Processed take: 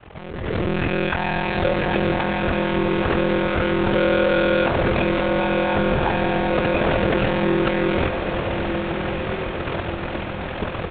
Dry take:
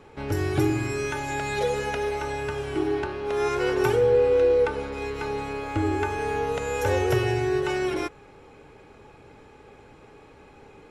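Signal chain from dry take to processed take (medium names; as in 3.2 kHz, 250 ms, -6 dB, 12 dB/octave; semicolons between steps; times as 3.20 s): AM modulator 150 Hz, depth 55%; in parallel at -7 dB: fuzz box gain 41 dB, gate -48 dBFS; on the sum: monotone LPC vocoder at 8 kHz 180 Hz; peaking EQ 63 Hz +10 dB 1.3 oct; ring modulator 21 Hz; peak limiter -24.5 dBFS, peak gain reduction 18 dB; bass shelf 97 Hz -11 dB; on a send: echo that smears into a reverb 1395 ms, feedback 51%, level -6 dB; on the sum: level rider gain up to 15.5 dB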